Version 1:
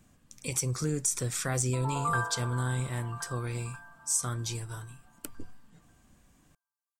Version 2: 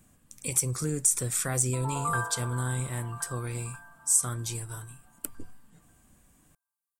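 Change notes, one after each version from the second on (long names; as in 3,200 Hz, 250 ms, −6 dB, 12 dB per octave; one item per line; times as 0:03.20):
master: add high shelf with overshoot 7,200 Hz +6.5 dB, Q 1.5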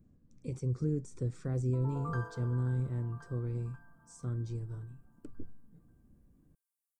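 speech: add head-to-tape spacing loss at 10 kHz 42 dB
master: add flat-topped bell 1,500 Hz −12.5 dB 2.8 octaves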